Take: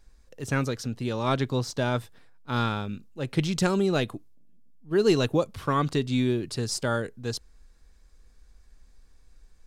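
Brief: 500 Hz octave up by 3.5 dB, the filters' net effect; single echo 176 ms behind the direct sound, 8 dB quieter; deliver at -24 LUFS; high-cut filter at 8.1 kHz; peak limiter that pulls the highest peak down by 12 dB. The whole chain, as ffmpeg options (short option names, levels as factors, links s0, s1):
-af "lowpass=8100,equalizer=f=500:t=o:g=4.5,alimiter=limit=0.0944:level=0:latency=1,aecho=1:1:176:0.398,volume=2.11"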